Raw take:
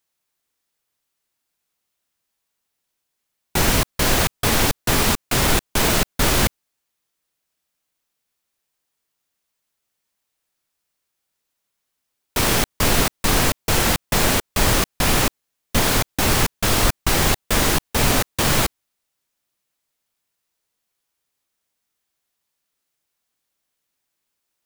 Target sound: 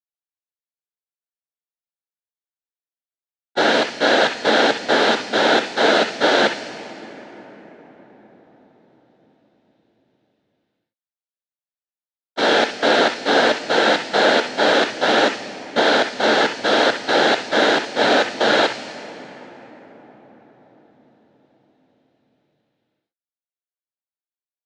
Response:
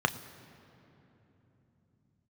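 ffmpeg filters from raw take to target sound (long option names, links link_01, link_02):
-filter_complex "[0:a]highpass=frequency=290:width=0.5412,highpass=frequency=290:width=1.3066,equalizer=frequency=380:width_type=q:width=4:gain=-6,equalizer=frequency=1100:width_type=q:width=4:gain=-10,equalizer=frequency=1700:width_type=q:width=4:gain=3,equalizer=frequency=4000:width_type=q:width=4:gain=6,lowpass=frequency=5900:width=0.5412,lowpass=frequency=5900:width=1.3066,agate=range=-31dB:threshold=-22dB:ratio=16:detection=peak[link_01];[1:a]atrim=start_sample=2205,asetrate=22050,aresample=44100[link_02];[link_01][link_02]afir=irnorm=-1:irlink=0,volume=-7.5dB"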